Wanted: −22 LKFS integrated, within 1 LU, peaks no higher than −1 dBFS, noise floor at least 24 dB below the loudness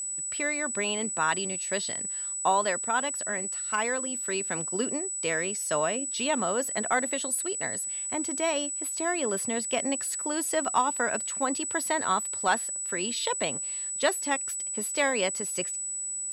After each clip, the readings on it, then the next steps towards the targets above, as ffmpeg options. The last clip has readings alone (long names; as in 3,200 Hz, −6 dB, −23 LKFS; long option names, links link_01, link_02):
interfering tone 7,900 Hz; level of the tone −31 dBFS; integrated loudness −28.0 LKFS; sample peak −12.5 dBFS; target loudness −22.0 LKFS
→ -af "bandreject=frequency=7900:width=30"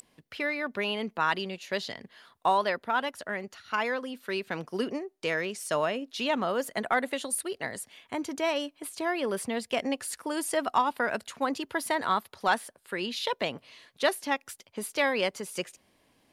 interfering tone none found; integrated loudness −30.5 LKFS; sample peak −13.5 dBFS; target loudness −22.0 LKFS
→ -af "volume=8.5dB"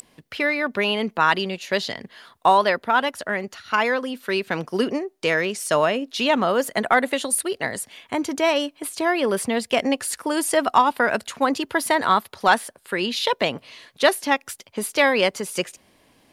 integrated loudness −22.0 LKFS; sample peak −5.0 dBFS; background noise floor −61 dBFS